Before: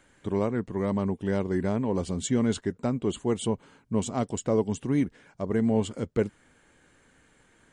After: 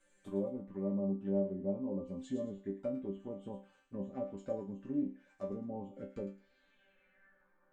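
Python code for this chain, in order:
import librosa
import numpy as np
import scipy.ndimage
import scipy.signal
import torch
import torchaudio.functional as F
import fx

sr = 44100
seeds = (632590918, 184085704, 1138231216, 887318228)

y = fx.env_lowpass_down(x, sr, base_hz=750.0, full_db=-23.5)
y = fx.small_body(y, sr, hz=(560.0, 1700.0, 2600.0), ring_ms=85, db=11)
y = fx.filter_sweep_lowpass(y, sr, from_hz=8300.0, to_hz=1100.0, start_s=6.04, end_s=7.56, q=3.5)
y = fx.env_flanger(y, sr, rest_ms=6.1, full_db=-24.5)
y = fx.resonator_bank(y, sr, root=55, chord='sus4', decay_s=0.31)
y = fx.echo_wet_highpass(y, sr, ms=109, feedback_pct=33, hz=1500.0, wet_db=-8.5)
y = y * 10.0 ** (5.5 / 20.0)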